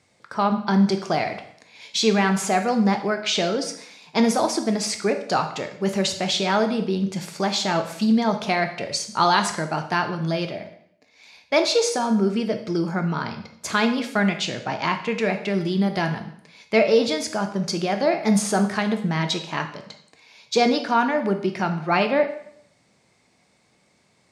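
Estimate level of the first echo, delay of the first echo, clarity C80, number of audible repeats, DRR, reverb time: none, none, 13.0 dB, none, 6.0 dB, 0.65 s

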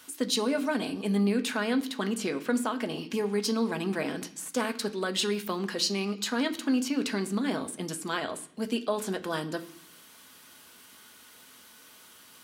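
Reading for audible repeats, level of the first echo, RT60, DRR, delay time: none, none, 0.65 s, 6.5 dB, none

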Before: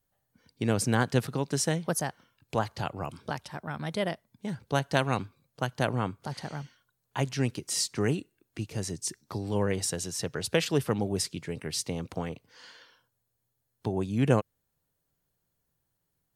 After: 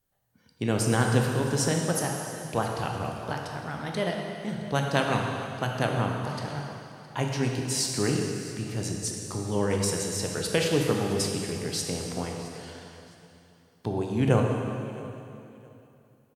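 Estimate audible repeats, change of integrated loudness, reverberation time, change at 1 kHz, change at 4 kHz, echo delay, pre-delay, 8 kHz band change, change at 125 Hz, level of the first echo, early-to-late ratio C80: 2, +2.5 dB, 3.0 s, +3.0 dB, +2.5 dB, 0.665 s, 7 ms, +2.5 dB, +3.0 dB, -19.0 dB, 2.5 dB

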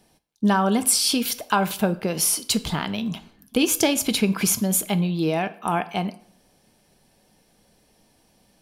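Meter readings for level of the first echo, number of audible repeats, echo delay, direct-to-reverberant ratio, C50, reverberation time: none, none, none, 11.5 dB, 17.5 dB, 0.60 s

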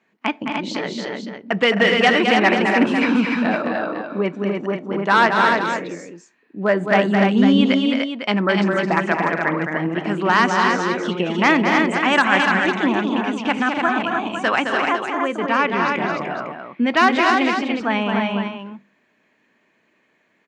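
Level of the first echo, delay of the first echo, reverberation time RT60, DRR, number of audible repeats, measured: -5.5 dB, 0.215 s, none, none, 4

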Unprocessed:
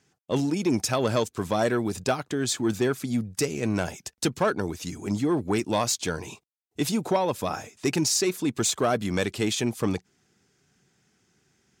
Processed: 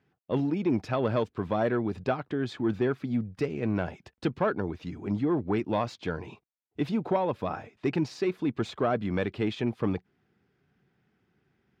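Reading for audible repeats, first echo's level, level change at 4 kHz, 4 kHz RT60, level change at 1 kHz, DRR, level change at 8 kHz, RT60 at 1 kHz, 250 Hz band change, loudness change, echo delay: none, none, -13.0 dB, none, -3.0 dB, none, under -25 dB, none, -2.0 dB, -3.5 dB, none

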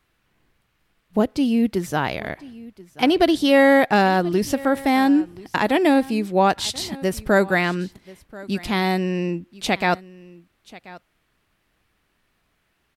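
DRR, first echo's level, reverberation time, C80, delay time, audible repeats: none, -20.5 dB, none, none, 1.034 s, 1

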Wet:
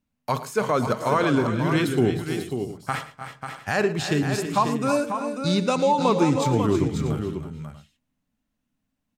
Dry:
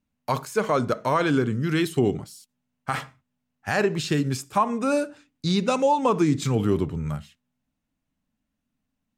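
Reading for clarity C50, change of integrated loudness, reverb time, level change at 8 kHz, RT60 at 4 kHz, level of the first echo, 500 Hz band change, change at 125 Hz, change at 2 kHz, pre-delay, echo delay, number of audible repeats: none, +1.0 dB, none, +1.5 dB, none, -15.5 dB, +1.5 dB, +1.5 dB, +1.5 dB, none, 0.111 s, 4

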